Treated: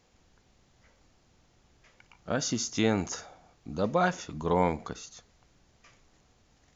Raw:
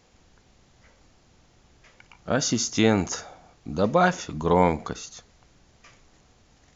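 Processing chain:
0:02.30–0:03.26: one half of a high-frequency compander encoder only
level −6 dB

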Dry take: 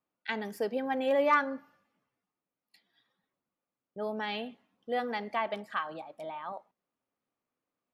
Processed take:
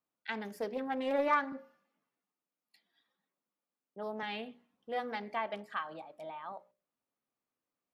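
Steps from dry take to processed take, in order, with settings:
mains-hum notches 60/120/180/240/300/360/420/480/540/600 Hz
0:01.52–0:04.23: high-pass filter 160 Hz 24 dB per octave
highs frequency-modulated by the lows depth 0.18 ms
level −4 dB

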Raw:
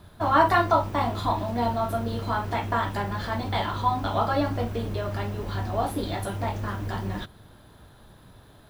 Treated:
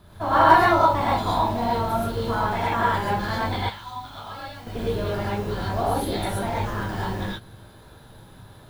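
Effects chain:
0:03.56–0:04.67: guitar amp tone stack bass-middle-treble 5-5-5
reverb whose tail is shaped and stops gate 150 ms rising, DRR −6 dB
level −2.5 dB

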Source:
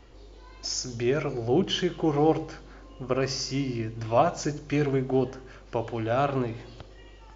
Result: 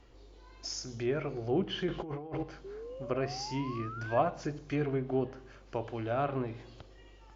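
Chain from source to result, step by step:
treble cut that deepens with the level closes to 2,800 Hz, closed at −22 dBFS
0:01.88–0:02.43: compressor whose output falls as the input rises −32 dBFS, ratio −1
0:02.64–0:04.19: sound drawn into the spectrogram rise 380–1,700 Hz −37 dBFS
level −6.5 dB

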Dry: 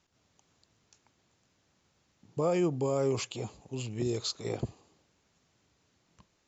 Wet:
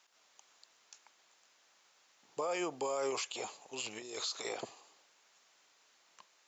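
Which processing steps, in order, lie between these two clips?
0:03.86–0:04.42: compressor whose output falls as the input rises −37 dBFS, ratio −1
high-pass filter 780 Hz 12 dB per octave
brickwall limiter −33.5 dBFS, peak gain reduction 10.5 dB
level +6.5 dB

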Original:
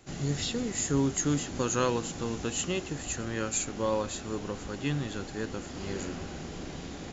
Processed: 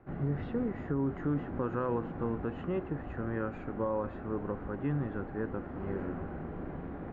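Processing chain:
low-pass filter 1,600 Hz 24 dB per octave
brickwall limiter −23 dBFS, peak gain reduction 7.5 dB

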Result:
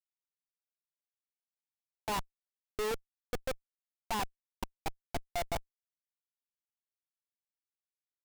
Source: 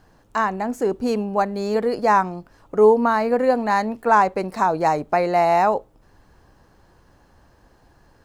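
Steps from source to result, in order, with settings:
one-sided soft clipper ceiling −14.5 dBFS
output level in coarse steps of 18 dB
comparator with hysteresis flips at −24.5 dBFS
level −3.5 dB

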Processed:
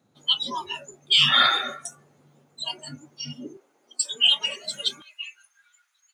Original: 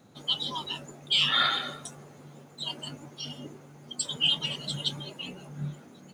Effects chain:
noise reduction from a noise print of the clip's start 16 dB
high-pass filter 54 Hz 24 dB per octave, from 0:03.57 320 Hz, from 0:05.02 1,400 Hz
level +6.5 dB

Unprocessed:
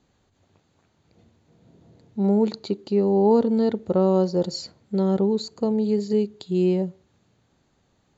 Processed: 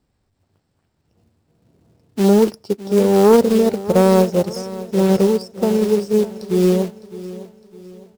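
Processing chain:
phase distortion by the signal itself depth 0.11 ms
low-shelf EQ 120 Hz +10.5 dB
floating-point word with a short mantissa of 2 bits
formants moved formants +3 semitones
repeating echo 608 ms, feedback 54%, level −11.5 dB
expander for the loud parts 1.5 to 1, over −39 dBFS
level +6 dB

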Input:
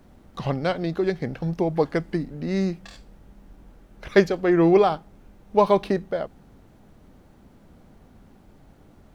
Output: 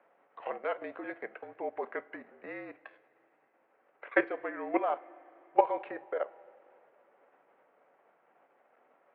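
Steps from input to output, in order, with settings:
output level in coarse steps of 14 dB
coupled-rooms reverb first 0.27 s, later 3.3 s, from −18 dB, DRR 13 dB
single-sideband voice off tune −51 Hz 540–2,500 Hz

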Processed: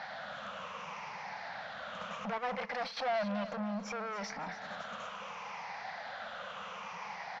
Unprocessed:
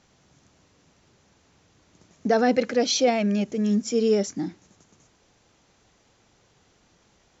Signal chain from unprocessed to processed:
rippled gain that drifts along the octave scale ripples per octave 0.78, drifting −0.67 Hz, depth 10 dB
0:03.49–0:04.16: parametric band 3,600 Hz −13.5 dB 1.9 octaves
mid-hump overdrive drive 19 dB, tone 2,400 Hz, clips at −7.5 dBFS
downward compressor 4 to 1, threshold −30 dBFS, peak gain reduction 14.5 dB
brickwall limiter −33 dBFS, peak gain reduction 12.5 dB
asymmetric clip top −43.5 dBFS, bottom −38.5 dBFS
drawn EQ curve 120 Hz 0 dB, 200 Hz +10 dB, 340 Hz −17 dB, 520 Hz +10 dB, 760 Hz +15 dB, 1,300 Hz +15 dB, 2,300 Hz +12 dB, 5,300 Hz +4 dB, 10,000 Hz −20 dB
repeating echo 278 ms, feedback 48%, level −14 dB
0:02.38–0:02.97: noise gate −34 dBFS, range −9 dB
level −3 dB

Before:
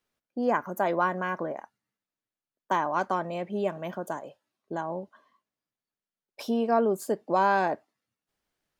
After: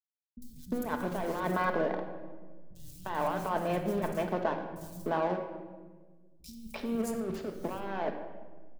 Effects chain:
one scale factor per block 5 bits
compressor whose output falls as the input rises −31 dBFS, ratio −1
slack as between gear wheels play −30.5 dBFS
three-band delay without the direct sound lows, highs, mids 50/350 ms, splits 150/4,800 Hz
on a send at −4 dB: convolution reverb RT60 1.4 s, pre-delay 5 ms

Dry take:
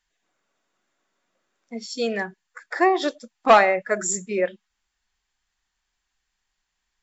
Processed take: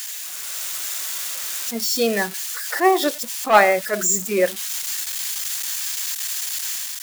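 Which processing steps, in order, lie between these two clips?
spike at every zero crossing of −22 dBFS
automatic gain control gain up to 5 dB
level that may rise only so fast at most 210 dB per second

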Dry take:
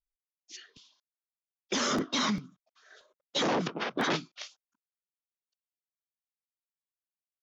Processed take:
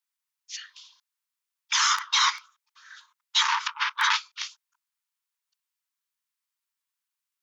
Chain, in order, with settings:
linear-phase brick-wall high-pass 860 Hz
level +9 dB

